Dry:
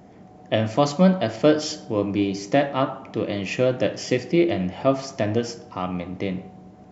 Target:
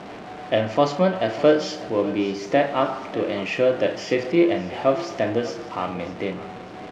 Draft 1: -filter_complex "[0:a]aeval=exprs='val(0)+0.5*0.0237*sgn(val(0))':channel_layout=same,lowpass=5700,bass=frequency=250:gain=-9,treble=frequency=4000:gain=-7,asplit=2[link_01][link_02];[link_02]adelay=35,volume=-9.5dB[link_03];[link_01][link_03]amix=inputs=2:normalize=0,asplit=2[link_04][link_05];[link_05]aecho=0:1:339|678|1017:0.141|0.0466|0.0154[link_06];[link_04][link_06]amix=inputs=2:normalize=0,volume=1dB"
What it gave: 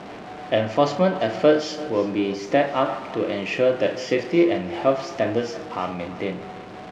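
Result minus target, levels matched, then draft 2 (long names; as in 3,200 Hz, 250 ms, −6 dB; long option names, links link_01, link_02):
echo 257 ms early
-filter_complex "[0:a]aeval=exprs='val(0)+0.5*0.0237*sgn(val(0))':channel_layout=same,lowpass=5700,bass=frequency=250:gain=-9,treble=frequency=4000:gain=-7,asplit=2[link_01][link_02];[link_02]adelay=35,volume=-9.5dB[link_03];[link_01][link_03]amix=inputs=2:normalize=0,asplit=2[link_04][link_05];[link_05]aecho=0:1:596|1192|1788:0.141|0.0466|0.0154[link_06];[link_04][link_06]amix=inputs=2:normalize=0,volume=1dB"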